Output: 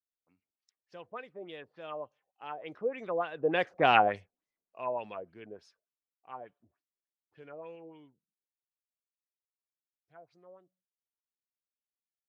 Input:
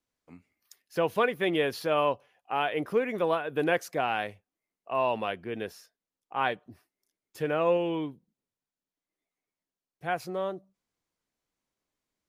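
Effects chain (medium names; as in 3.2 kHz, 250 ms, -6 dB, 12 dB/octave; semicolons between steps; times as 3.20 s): Doppler pass-by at 3.94 s, 13 m/s, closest 1.8 m; LFO low-pass sine 3.4 Hz 520–6600 Hz; trim +5.5 dB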